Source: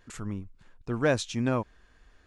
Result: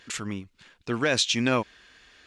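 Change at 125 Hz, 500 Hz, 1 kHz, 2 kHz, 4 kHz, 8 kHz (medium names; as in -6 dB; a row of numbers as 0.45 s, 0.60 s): -2.0 dB, +0.5 dB, +4.0 dB, +6.5 dB, +13.5 dB, +10.0 dB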